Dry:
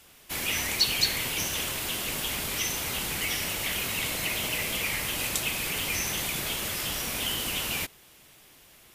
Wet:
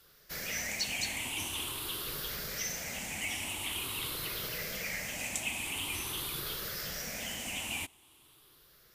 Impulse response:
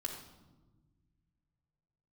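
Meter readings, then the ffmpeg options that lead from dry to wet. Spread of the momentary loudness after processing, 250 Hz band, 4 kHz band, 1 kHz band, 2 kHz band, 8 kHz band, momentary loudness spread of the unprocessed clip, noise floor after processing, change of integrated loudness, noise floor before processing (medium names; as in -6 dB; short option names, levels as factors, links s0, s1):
4 LU, -7.5 dB, -8.0 dB, -7.5 dB, -6.5 dB, -7.0 dB, 5 LU, -62 dBFS, -7.5 dB, -55 dBFS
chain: -af "afftfilt=real='re*pow(10,10/40*sin(2*PI*(0.6*log(max(b,1)*sr/1024/100)/log(2)-(0.46)*(pts-256)/sr)))':imag='im*pow(10,10/40*sin(2*PI*(0.6*log(max(b,1)*sr/1024/100)/log(2)-(0.46)*(pts-256)/sr)))':win_size=1024:overlap=0.75,volume=0.376"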